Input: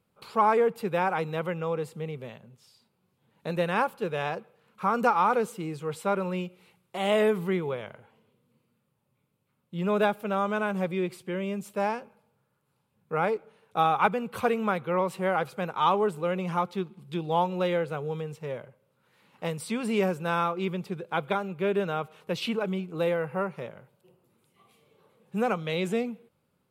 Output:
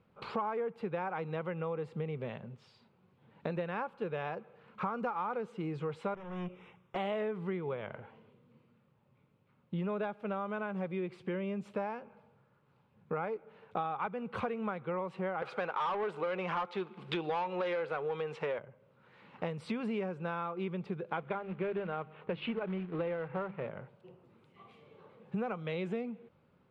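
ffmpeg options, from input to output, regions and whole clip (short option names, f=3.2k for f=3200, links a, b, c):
-filter_complex "[0:a]asettb=1/sr,asplit=3[a][b][c];[a]atrim=end=6.144[d];[b]atrim=start=6.14:end=6.96,asetpts=PTS-STARTPTS,afade=t=in:d=0.004:c=qsin,afade=t=out:st=0.816:d=0.004:c=qsin,aeval=exprs='(tanh(89.1*val(0)+0.35)-tanh(0.35))/89.1':c=same,asuperstop=centerf=4400:order=8:qfactor=3.2,equalizer=f=1.1k:w=5.6:g=4.5[e];[c]atrim=start=6.956[f];[d][e]acrossfade=d=0.004:c1=hsin:c2=qsin[g];[g][f]acrossfade=d=0.004:c1=qsin:c2=hsin,asettb=1/sr,asplit=3[h][i][j];[h]atrim=end=15.424[k];[i]atrim=start=15.42:end=18.59,asetpts=PTS-STARTPTS,afade=t=in:d=0.004:c=qsin,afade=t=out:st=3.166:d=0.004:c=qsin,asplit=2[l][m];[m]highpass=f=720:p=1,volume=20dB,asoftclip=type=tanh:threshold=-11.5dB[n];[l][n]amix=inputs=2:normalize=0,lowpass=f=6.1k:p=1,volume=-6dB,lowshelf=f=180:g=-10[o];[j]atrim=start=18.586[p];[k][o]acrossfade=d=0.004:c1=hsin:c2=qsin[q];[q][p]acrossfade=d=0.004:c1=qsin:c2=hsin,asettb=1/sr,asplit=3[r][s][t];[r]atrim=end=21.174[u];[s]atrim=start=21.17:end=23.7,asetpts=PTS-STARTPTS,afade=t=in:d=0.004:c=qsin,afade=t=out:st=2.526:d=0.004:c=qsin,bandreject=f=50:t=h:w=6,bandreject=f=100:t=h:w=6,bandreject=f=150:t=h:w=6,bandreject=f=200:t=h:w=6,bandreject=f=250:t=h:w=6,bandreject=f=300:t=h:w=6,acrusher=bits=3:mode=log:mix=0:aa=0.000001,lowpass=f=3.2k:w=0.5412,lowpass=f=3.2k:w=1.3066[v];[t]atrim=start=23.696[w];[u][v]acrossfade=d=0.004:c1=hsin:c2=qsin[x];[x][w]acrossfade=d=0.004:c1=qsin:c2=hsin,acontrast=37,lowpass=2.6k,acompressor=threshold=-34dB:ratio=6"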